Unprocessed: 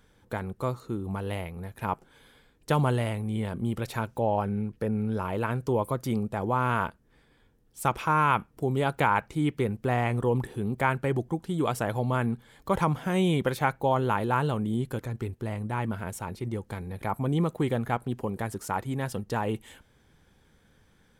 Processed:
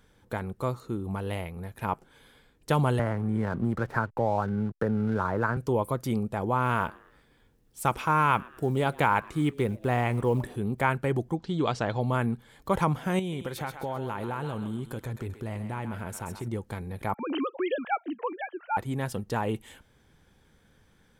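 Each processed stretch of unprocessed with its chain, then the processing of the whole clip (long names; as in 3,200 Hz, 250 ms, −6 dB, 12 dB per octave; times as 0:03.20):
0:02.99–0:05.57: high shelf with overshoot 2,200 Hz −12 dB, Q 3 + slack as between gear wheels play −44 dBFS + multiband upward and downward compressor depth 70%
0:06.65–0:10.56: log-companded quantiser 8 bits + echo with shifted repeats 114 ms, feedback 44%, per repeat +120 Hz, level −24 dB
0:11.35–0:12.01: low-pass filter 6,300 Hz 24 dB per octave + parametric band 4,300 Hz +7 dB 0.65 octaves
0:13.19–0:16.48: downward compressor 4 to 1, threshold −30 dBFS + feedback echo with a high-pass in the loop 131 ms, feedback 46%, high-pass 600 Hz, level −8 dB
0:17.14–0:18.77: three sine waves on the formant tracks + spectral tilt +2.5 dB per octave
whole clip: no processing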